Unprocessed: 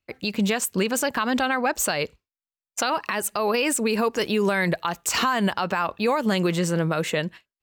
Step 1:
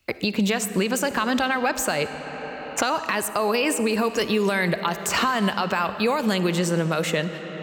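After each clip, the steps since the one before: on a send at -11.5 dB: reverb RT60 2.9 s, pre-delay 15 ms; on the sum: three-band squash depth 70%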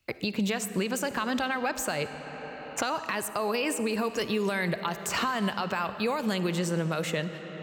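bell 130 Hz +6 dB 0.39 oct; gain -6.5 dB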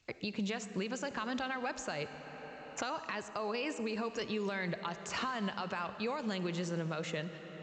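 gain -8 dB; A-law 128 kbps 16000 Hz

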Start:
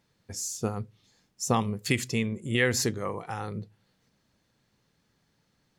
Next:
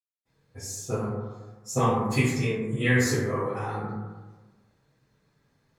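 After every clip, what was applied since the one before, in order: flange 0.43 Hz, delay 6.2 ms, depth 2.5 ms, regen -44%; reverb RT60 1.3 s, pre-delay 0.251 s; gain +4 dB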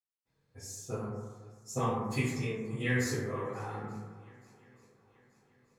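swung echo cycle 0.882 s, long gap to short 1.5:1, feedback 42%, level -23 dB; gain -8 dB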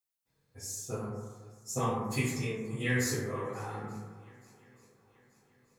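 high shelf 6400 Hz +9 dB

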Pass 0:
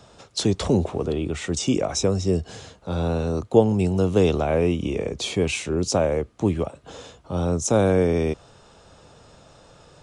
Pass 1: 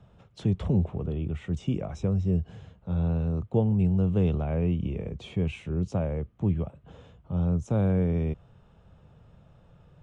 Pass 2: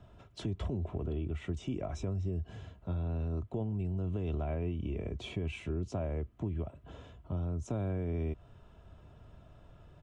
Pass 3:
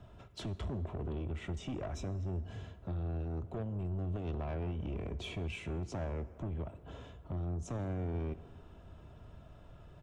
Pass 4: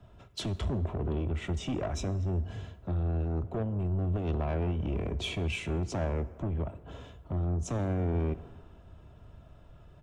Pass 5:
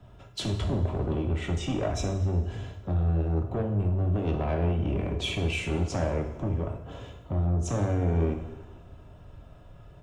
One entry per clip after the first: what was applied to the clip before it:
EQ curve 180 Hz 0 dB, 280 Hz -11 dB, 3100 Hz -14 dB, 4600 Hz -27 dB
limiter -21.5 dBFS, peak gain reduction 7.5 dB; comb 3 ms, depth 50%; compressor 3:1, threshold -33 dBFS, peak gain reduction 7 dB
soft clip -35.5 dBFS, distortion -12 dB; on a send at -14.5 dB: reverb RT60 2.5 s, pre-delay 17 ms; on the sum: gain +1.5 dB
three-band expander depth 40%; gain +7 dB
two-slope reverb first 0.68 s, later 2.3 s, from -18 dB, DRR 3 dB; gain +2.5 dB

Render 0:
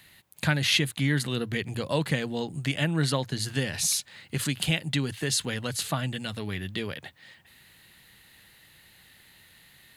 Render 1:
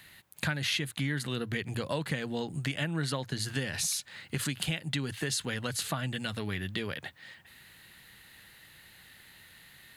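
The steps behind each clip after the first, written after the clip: bell 1500 Hz +3.5 dB 0.81 oct; compressor 3:1, threshold -30 dBFS, peak gain reduction 10 dB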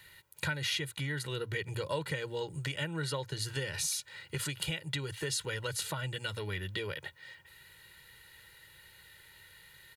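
comb 2.1 ms, depth 84%; gain -4.5 dB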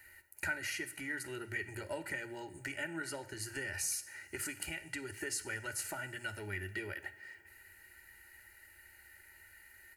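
fixed phaser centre 720 Hz, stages 8; two-slope reverb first 0.62 s, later 3.3 s, from -18 dB, DRR 10.5 dB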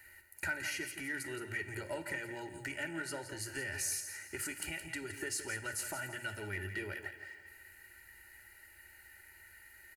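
in parallel at -8.5 dB: soft clip -35.5 dBFS, distortion -13 dB; on the sum: feedback echo 0.169 s, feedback 35%, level -10 dB; gain -2 dB

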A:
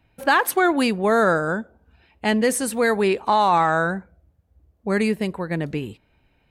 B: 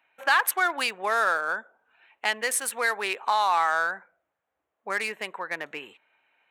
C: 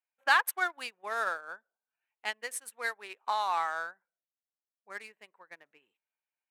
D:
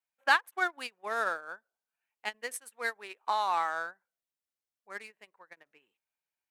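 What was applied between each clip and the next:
Wiener smoothing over 9 samples; HPF 1100 Hz 12 dB/oct; in parallel at +3 dB: compressor, threshold -32 dBFS, peak gain reduction 15 dB; on the sum: gain -2.5 dB
upward expander 2.5:1, over -37 dBFS; gain -1.5 dB
vibrato 0.35 Hz 5 cents; dynamic EQ 250 Hz, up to +7 dB, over -52 dBFS, Q 0.78; ending taper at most 550 dB/s

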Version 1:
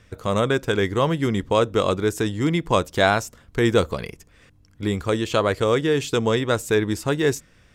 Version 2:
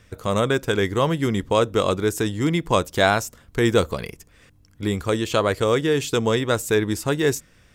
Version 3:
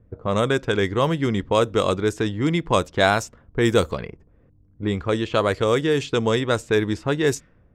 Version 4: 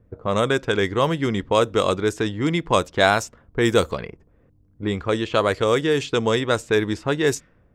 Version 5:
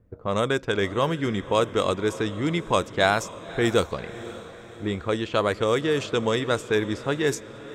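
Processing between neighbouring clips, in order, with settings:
high shelf 9300 Hz +8 dB
low-pass opened by the level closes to 490 Hz, open at -14.5 dBFS
low shelf 270 Hz -4 dB; gain +1.5 dB
diffused feedback echo 0.553 s, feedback 51%, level -15.5 dB; gain -3.5 dB

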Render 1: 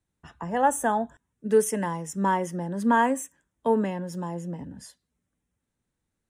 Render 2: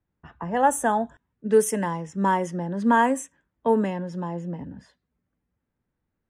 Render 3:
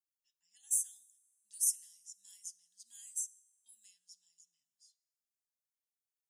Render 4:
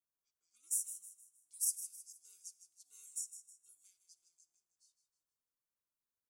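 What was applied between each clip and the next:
low-pass opened by the level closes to 2000 Hz, open at -19.5 dBFS; gain +2 dB
inverse Chebyshev high-pass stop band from 1300 Hz, stop band 70 dB; two-slope reverb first 0.88 s, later 3.1 s, from -18 dB, DRR 20 dB
ten-band EQ 250 Hz -8 dB, 500 Hz +10 dB, 1000 Hz +6 dB, 2000 Hz -9 dB, 4000 Hz -6 dB; ring modulator 510 Hz; feedback echo 0.157 s, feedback 39%, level -11.5 dB

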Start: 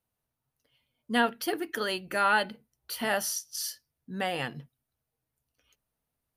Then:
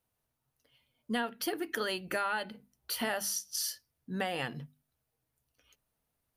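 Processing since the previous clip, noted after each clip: notches 50/100/150/200/250 Hz; compressor 6:1, threshold -32 dBFS, peak gain reduction 12 dB; gain +2 dB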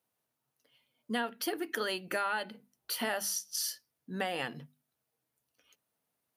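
HPF 180 Hz 12 dB/oct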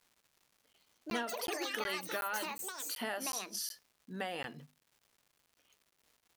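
echoes that change speed 0.291 s, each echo +6 st, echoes 3; crackle 340/s -51 dBFS; crackling interface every 0.37 s, samples 512, zero, from 0.73; gain -5 dB

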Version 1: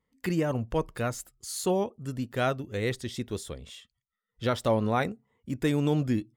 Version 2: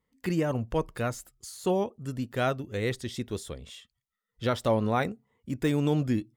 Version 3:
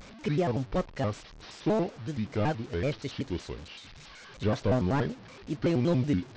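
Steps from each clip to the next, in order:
de-esser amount 80%
delta modulation 32 kbps, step -42.5 dBFS; shaped vibrato square 5.3 Hz, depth 250 cents

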